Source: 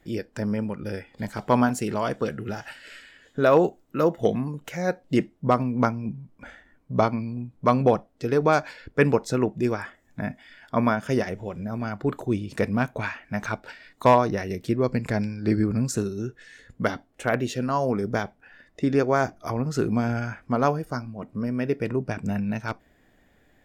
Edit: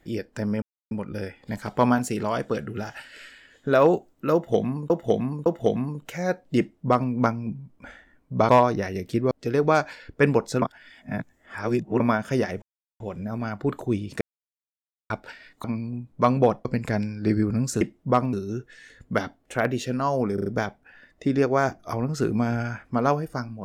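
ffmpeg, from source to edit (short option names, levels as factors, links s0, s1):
-filter_complex "[0:a]asplit=18[s0][s1][s2][s3][s4][s5][s6][s7][s8][s9][s10][s11][s12][s13][s14][s15][s16][s17];[s0]atrim=end=0.62,asetpts=PTS-STARTPTS,afade=t=out:st=0.616:d=0.004:c=hsin,apad=pad_dur=0.29[s18];[s1]atrim=start=0.62:end=4.612,asetpts=PTS-STARTPTS,afade=t=in:d=0.004:c=hsin[s19];[s2]atrim=start=4.048:end=4.612[s20];[s3]atrim=start=4.048:end=7.082[s21];[s4]atrim=start=14.038:end=14.862[s22];[s5]atrim=start=8.088:end=9.402[s23];[s6]atrim=start=9.398:end=10.782,asetpts=PTS-STARTPTS,areverse[s24];[s7]atrim=start=10.778:end=11.4,asetpts=PTS-STARTPTS,afade=t=out:st=0.618:d=0.004:c=hsin,apad=pad_dur=0.38[s25];[s8]atrim=start=11.4:end=12.61,asetpts=PTS-STARTPTS,afade=t=in:d=0.004:c=hsin,afade=t=out:st=1.206:d=0.004:c=hsin[s26];[s9]atrim=start=12.61:end=13.5,asetpts=PTS-STARTPTS,volume=0[s27];[s10]atrim=start=13.5:end=14.042,asetpts=PTS-STARTPTS,afade=t=in:d=0.004:c=hsin[s28];[s11]atrim=start=7.078:end=8.092[s29];[s12]atrim=start=14.858:end=16.022[s30];[s13]atrim=start=5.178:end=5.702[s31];[s14]atrim=start=16.018:end=18.072[s32];[s15]atrim=start=18.028:end=18.072[s33];[s16]atrim=start=18.028:end=18.072[s34];[s17]atrim=start=18.028[s35];[s18][s19]concat=n=2:v=0:a=1[s36];[s36][s20]acrossfade=d=0.004:c1=hsin:c2=hsin[s37];[s37][s21]acrossfade=d=0.004:c1=hsin:c2=hsin[s38];[s38][s22]acrossfade=d=0.004:c1=hsin:c2=hsin[s39];[s39][s23]acrossfade=d=0.004:c1=hsin:c2=hsin[s40];[s40][s24]acrossfade=d=0.004:c1=hsin:c2=hsin[s41];[s25][s26][s27][s28]concat=n=4:v=0:a=1[s42];[s41][s42]acrossfade=d=0.004:c1=hsin:c2=hsin[s43];[s43][s29]acrossfade=d=0.004:c1=hsin:c2=hsin[s44];[s44][s30]acrossfade=d=0.004:c1=hsin:c2=hsin[s45];[s45][s31]acrossfade=d=0.004:c1=hsin:c2=hsin[s46];[s46][s32]acrossfade=d=0.004:c1=hsin:c2=hsin[s47];[s47][s33]acrossfade=d=0.004:c1=hsin:c2=hsin[s48];[s48][s34]acrossfade=d=0.004:c1=hsin:c2=hsin[s49];[s49][s35]acrossfade=d=0.004:c1=hsin:c2=hsin"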